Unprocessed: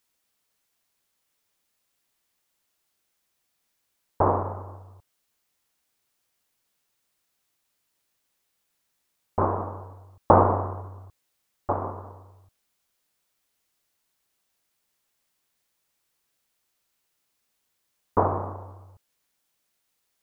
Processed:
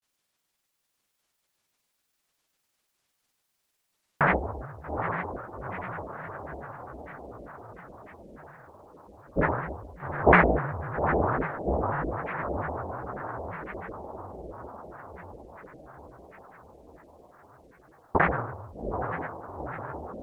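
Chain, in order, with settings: echo that smears into a reverb 822 ms, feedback 64%, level -5 dB; granulator 100 ms, grains 20 per s, spray 38 ms, pitch spread up and down by 12 st

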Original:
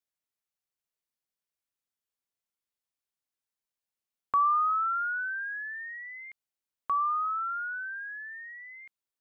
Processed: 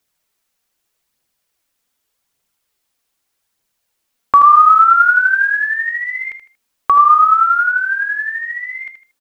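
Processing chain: phaser 0.83 Hz, delay 4.5 ms, feedback 37%; on a send: feedback delay 78 ms, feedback 28%, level -9 dB; on the sum: loudness maximiser +19.5 dB; trim -1 dB

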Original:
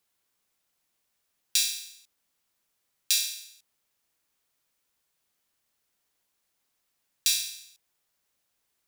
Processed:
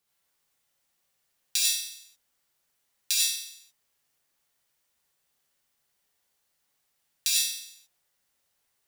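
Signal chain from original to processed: gated-style reverb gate 120 ms rising, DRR -3 dB; trim -3 dB

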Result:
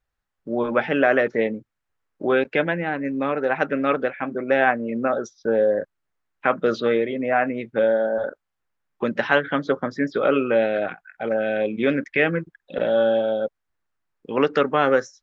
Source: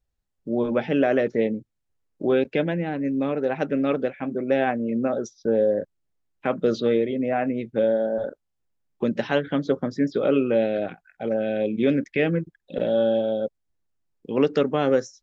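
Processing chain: peaking EQ 1.4 kHz +14 dB 2.2 oct; trim -3.5 dB

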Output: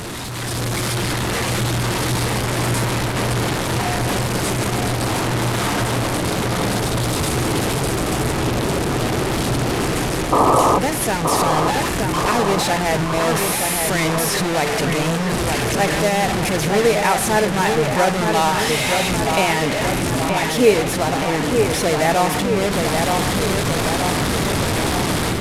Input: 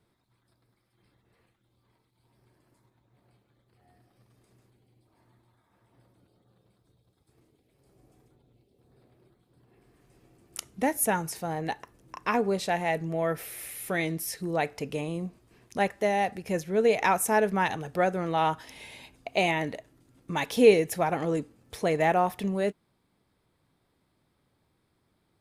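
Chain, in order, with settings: one-bit delta coder 64 kbps, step -22 dBFS; painted sound noise, 10.32–10.79 s, 250–1300 Hz -18 dBFS; level rider gain up to 8 dB; on a send: feedback echo behind a low-pass 923 ms, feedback 63%, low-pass 2.7 kHz, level -4.5 dB; on the sum: trim -1 dB

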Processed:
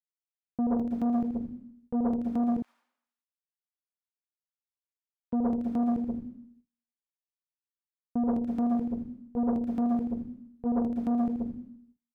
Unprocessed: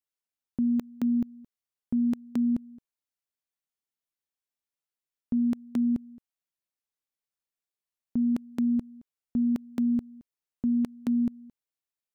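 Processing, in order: delay 81 ms -8 dB; plate-style reverb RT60 0.77 s, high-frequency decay 0.95×, pre-delay 105 ms, DRR 1.5 dB; gate with hold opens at -51 dBFS; 2.62–5.33 s: high-pass 990 Hz 24 dB/octave; tilt EQ -2 dB/octave; transformer saturation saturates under 390 Hz; trim -4 dB

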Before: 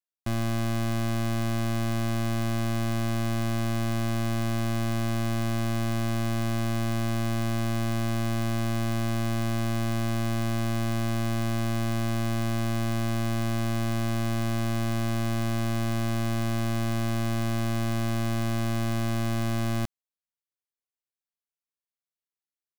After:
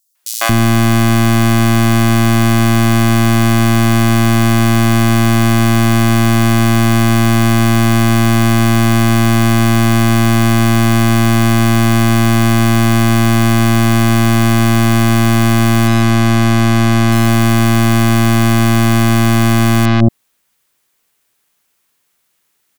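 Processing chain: 15.87–17.12 s: steep low-pass 7 kHz 36 dB/octave; saturation -32.5 dBFS, distortion -39 dB; bass shelf 110 Hz -6.5 dB; three bands offset in time highs, mids, lows 150/230 ms, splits 620/4800 Hz; loudness maximiser +32.5 dB; trim -1 dB

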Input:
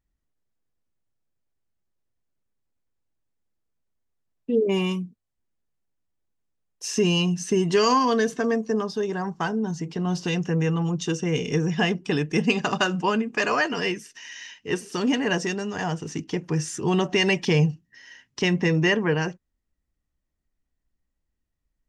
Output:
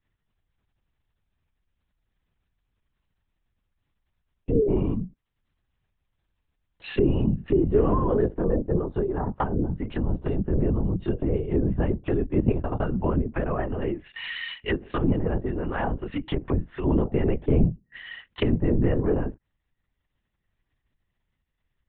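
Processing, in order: LPC vocoder at 8 kHz whisper; low-pass that closes with the level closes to 470 Hz, closed at -22.5 dBFS; tilt shelf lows -4 dB, about 780 Hz; trim +4.5 dB

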